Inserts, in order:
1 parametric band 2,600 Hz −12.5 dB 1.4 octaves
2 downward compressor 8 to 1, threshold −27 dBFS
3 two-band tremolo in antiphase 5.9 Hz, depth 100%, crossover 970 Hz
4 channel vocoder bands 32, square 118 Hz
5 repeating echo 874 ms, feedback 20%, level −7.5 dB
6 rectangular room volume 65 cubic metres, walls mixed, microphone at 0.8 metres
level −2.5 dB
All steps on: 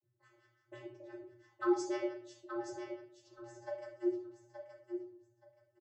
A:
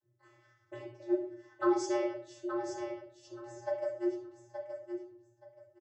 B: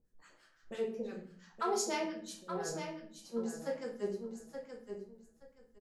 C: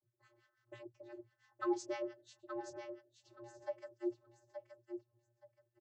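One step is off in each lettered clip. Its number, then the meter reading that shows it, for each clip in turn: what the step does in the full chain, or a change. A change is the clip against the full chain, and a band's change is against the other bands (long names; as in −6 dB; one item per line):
3, change in momentary loudness spread −2 LU
4, 4 kHz band +7.5 dB
6, echo-to-direct ratio 2.5 dB to −7.5 dB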